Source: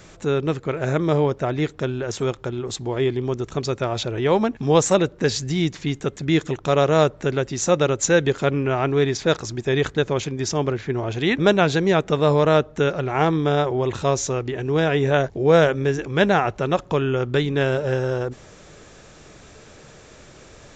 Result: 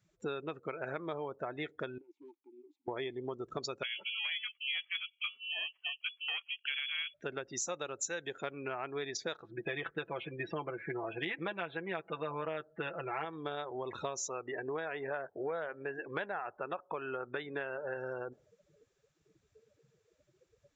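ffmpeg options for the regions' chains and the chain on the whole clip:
ffmpeg -i in.wav -filter_complex "[0:a]asettb=1/sr,asplit=3[link_01][link_02][link_03];[link_01]atrim=end=1.984[link_04];[link_02]atrim=start=1.98:end=2.88,asetpts=PTS-STARTPTS,afade=type=in:duration=0.004:curve=qsin,afade=type=out:start_time=0.896:duration=0.004:curve=qsin,asplit=3[link_05][link_06][link_07];[link_05]bandpass=frequency=300:width_type=q:width=8,volume=0dB[link_08];[link_06]bandpass=frequency=870:width_type=q:width=8,volume=-6dB[link_09];[link_07]bandpass=frequency=2240:width_type=q:width=8,volume=-9dB[link_10];[link_08][link_09][link_10]amix=inputs=3:normalize=0,lowshelf=frequency=370:gain=-9.5,aeval=exprs='0.0141*(abs(mod(val(0)/0.0141+3,4)-2)-1)':channel_layout=same[link_11];[link_03]atrim=start=2.876[link_12];[link_04][link_11]acrossfade=duration=0.004:curve1=hsin:curve2=qsin[link_13];[link_13][link_12]acrossfade=duration=0.004:curve1=qsin:curve2=hsin,asettb=1/sr,asplit=3[link_14][link_15][link_16];[link_14]atrim=end=3.834[link_17];[link_15]atrim=start=3.83:end=7.14,asetpts=PTS-STARTPTS,afade=type=in:duration=0.004:curve=qsin,afade=type=out:start_time=3.306:duration=0.004:curve=qsin,equalizer=frequency=200:width_type=o:width=1.4:gain=-12,aeval=exprs='val(0)*sin(2*PI*550*n/s)':channel_layout=same,lowpass=frequency=2900:width_type=q:width=0.5098,lowpass=frequency=2900:width_type=q:width=0.6013,lowpass=frequency=2900:width_type=q:width=0.9,lowpass=frequency=2900:width_type=q:width=2.563,afreqshift=-3400[link_18];[link_16]atrim=start=7.136[link_19];[link_17][link_18]acrossfade=duration=0.004:curve1=hsin:curve2=qsin[link_20];[link_20][link_19]acrossfade=duration=0.004:curve1=qsin:curve2=hsin,asettb=1/sr,asplit=3[link_21][link_22][link_23];[link_21]atrim=end=9.424[link_24];[link_22]atrim=start=9.42:end=13.25,asetpts=PTS-STARTPTS,afade=type=in:duration=0.004:curve=qsin,afade=type=out:start_time=3.826:duration=0.004:curve=qsin,lowpass=frequency=3100:width=0.5412,lowpass=frequency=3100:width=1.3066,aecho=1:1:6:0.69,atrim=end_sample=168903[link_25];[link_23]atrim=start=13.246[link_26];[link_24][link_25]acrossfade=duration=0.004:curve1=hsin:curve2=qsin[link_27];[link_27][link_26]acrossfade=duration=0.004:curve1=qsin:curve2=hsin,asettb=1/sr,asplit=3[link_28][link_29][link_30];[link_28]atrim=end=14.284[link_31];[link_29]atrim=start=14.28:end=17.97,asetpts=PTS-STARTPTS,afade=type=in:duration=0.004:curve=qsin,afade=type=out:start_time=3.686:duration=0.004:curve=qsin,aemphasis=mode=reproduction:type=75fm,asplit=2[link_32][link_33];[link_33]highpass=frequency=720:poles=1,volume=8dB,asoftclip=type=tanh:threshold=-4dB[link_34];[link_32][link_34]amix=inputs=2:normalize=0,lowpass=frequency=2600:poles=1,volume=-6dB[link_35];[link_30]atrim=start=17.966[link_36];[link_31][link_35]acrossfade=duration=0.004:curve1=hsin:curve2=qsin[link_37];[link_37][link_36]acrossfade=duration=0.004:curve1=qsin:curve2=hsin,afftdn=noise_reduction=34:noise_floor=-33,highpass=frequency=1200:poles=1,acompressor=threshold=-38dB:ratio=10,volume=3dB" out.wav

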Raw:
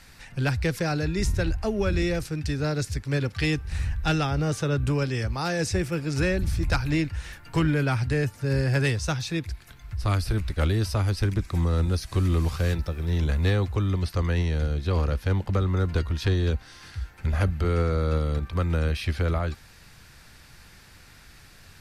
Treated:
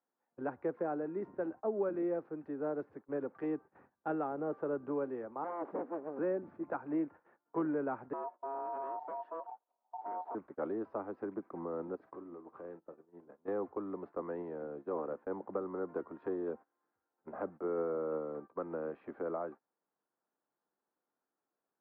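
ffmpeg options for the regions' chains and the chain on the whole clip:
ffmpeg -i in.wav -filter_complex "[0:a]asettb=1/sr,asplit=3[link_01][link_02][link_03];[link_01]atrim=end=5.444[link_04];[link_02]atrim=start=5.44:end=6.19,asetpts=PTS-STARTPTS,afade=type=in:duration=0.004:curve=qsin,afade=type=out:start_time=0.746:duration=0.004:curve=qsin,equalizer=frequency=3000:width_type=o:width=1:gain=-4.5,aeval=exprs='abs(val(0))':channel_layout=same[link_05];[link_03]atrim=start=6.186[link_06];[link_04][link_05]acrossfade=duration=0.004:curve1=hsin:curve2=qsin[link_07];[link_07][link_06]acrossfade=duration=0.004:curve1=qsin:curve2=hsin,asettb=1/sr,asplit=3[link_08][link_09][link_10];[link_08]atrim=end=8.134[link_11];[link_09]atrim=start=8.13:end=10.35,asetpts=PTS-STARTPTS,afade=type=in:duration=0.004:curve=qsin,afade=type=out:start_time=2.216:duration=0.004:curve=qsin,highpass=90,volume=28.5dB,asoftclip=hard,volume=-28.5dB,aeval=exprs='val(0)*sin(2*PI*820*n/s)':channel_layout=same[link_12];[link_10]atrim=start=10.346[link_13];[link_11][link_12]acrossfade=duration=0.004:curve1=hsin:curve2=qsin[link_14];[link_14][link_13]acrossfade=duration=0.004:curve1=qsin:curve2=hsin,asettb=1/sr,asplit=3[link_15][link_16][link_17];[link_15]atrim=end=11.954[link_18];[link_16]atrim=start=11.95:end=13.48,asetpts=PTS-STARTPTS,afade=type=in:duration=0.004:curve=qsin,afade=type=out:start_time=1.526:duration=0.004:curve=qsin,acompressor=threshold=-29dB:ratio=6:attack=3.2:release=140:knee=1:detection=peak,asplit=2[link_19][link_20];[link_20]adelay=46,volume=-10dB[link_21];[link_19][link_21]amix=inputs=2:normalize=0,atrim=end_sample=67473[link_22];[link_17]atrim=start=13.476[link_23];[link_18][link_22]acrossfade=duration=0.004:curve1=hsin:curve2=qsin[link_24];[link_24][link_23]acrossfade=duration=0.004:curve1=qsin:curve2=hsin,highpass=frequency=280:width=0.5412,highpass=frequency=280:width=1.3066,agate=range=-23dB:threshold=-41dB:ratio=16:detection=peak,lowpass=frequency=1100:width=0.5412,lowpass=frequency=1100:width=1.3066,volume=-5.5dB" out.wav

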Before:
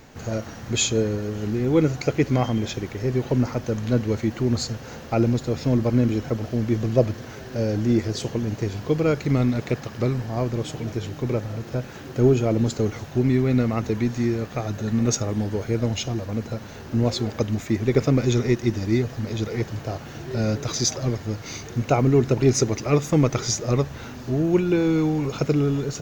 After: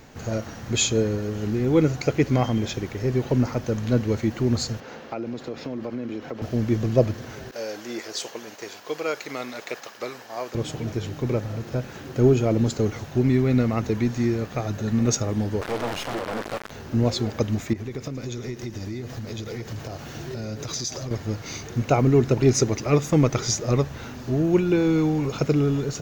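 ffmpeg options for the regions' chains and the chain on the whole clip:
ffmpeg -i in.wav -filter_complex "[0:a]asettb=1/sr,asplit=3[link_01][link_02][link_03];[link_01]atrim=end=4.804[link_04];[link_02]atrim=start=4.8:end=6.42,asetpts=PTS-STARTPTS,afade=type=in:duration=0.004:curve=qsin,afade=type=out:start_time=1.616:duration=0.004:curve=qsin,acrossover=split=200 4600:gain=0.141 1 0.224[link_05][link_06][link_07];[link_05][link_06][link_07]amix=inputs=3:normalize=0,acompressor=threshold=-27dB:ratio=5:attack=3.2:release=140:knee=1:detection=peak[link_08];[link_03]atrim=start=6.416[link_09];[link_04][link_08]acrossfade=duration=0.004:curve1=hsin:curve2=qsin[link_10];[link_10][link_09]acrossfade=duration=0.004:curve1=qsin:curve2=hsin,asettb=1/sr,asplit=3[link_11][link_12][link_13];[link_11]atrim=end=7.514[link_14];[link_12]atrim=start=7.51:end=10.55,asetpts=PTS-STARTPTS,afade=type=in:duration=0.004:curve=qsin,afade=type=out:start_time=3.036:duration=0.004:curve=qsin,highpass=620,highshelf=frequency=4200:gain=3.5,agate=range=-33dB:threshold=-41dB:ratio=3:release=100:detection=peak[link_15];[link_13]atrim=start=10.546[link_16];[link_14][link_15]acrossfade=duration=0.004:curve1=hsin:curve2=qsin[link_17];[link_17][link_16]acrossfade=duration=0.004:curve1=qsin:curve2=hsin,asettb=1/sr,asplit=3[link_18][link_19][link_20];[link_18]atrim=end=15.614[link_21];[link_19]atrim=start=15.61:end=16.71,asetpts=PTS-STARTPTS,afade=type=in:duration=0.004:curve=qsin,afade=type=out:start_time=1.096:duration=0.004:curve=qsin,lowshelf=frequency=160:gain=-5,acrusher=bits=3:dc=4:mix=0:aa=0.000001,asplit=2[link_22][link_23];[link_23]highpass=frequency=720:poles=1,volume=23dB,asoftclip=type=tanh:threshold=-16.5dB[link_24];[link_22][link_24]amix=inputs=2:normalize=0,lowpass=frequency=1500:poles=1,volume=-6dB[link_25];[link_20]atrim=start=16.706[link_26];[link_21][link_25]acrossfade=duration=0.004:curve1=hsin:curve2=qsin[link_27];[link_27][link_26]acrossfade=duration=0.004:curve1=qsin:curve2=hsin,asettb=1/sr,asplit=3[link_28][link_29][link_30];[link_28]atrim=end=17.734[link_31];[link_29]atrim=start=17.73:end=21.11,asetpts=PTS-STARTPTS,afade=type=in:duration=0.004:curve=qsin,afade=type=out:start_time=3.376:duration=0.004:curve=qsin,acompressor=threshold=-29dB:ratio=6:attack=3.2:release=140:knee=1:detection=peak,aecho=1:1:111:0.211,atrim=end_sample=149058,adynamicequalizer=threshold=0.00447:dfrequency=2900:dqfactor=0.7:tfrequency=2900:tqfactor=0.7:attack=5:release=100:ratio=0.375:range=2:mode=boostabove:tftype=highshelf[link_32];[link_30]atrim=start=21.106[link_33];[link_31][link_32]acrossfade=duration=0.004:curve1=hsin:curve2=qsin[link_34];[link_34][link_33]acrossfade=duration=0.004:curve1=qsin:curve2=hsin" out.wav

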